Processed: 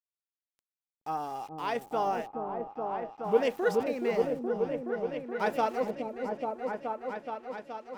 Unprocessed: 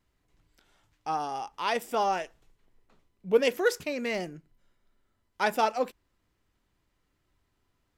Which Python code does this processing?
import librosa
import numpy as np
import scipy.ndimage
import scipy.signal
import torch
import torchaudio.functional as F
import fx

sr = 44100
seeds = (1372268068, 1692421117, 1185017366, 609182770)

y = fx.high_shelf(x, sr, hz=2200.0, db=-10.0)
y = np.where(np.abs(y) >= 10.0 ** (-47.0 / 20.0), y, 0.0)
y = fx.echo_opening(y, sr, ms=423, hz=400, octaves=1, feedback_pct=70, wet_db=0)
y = y * librosa.db_to_amplitude(-2.0)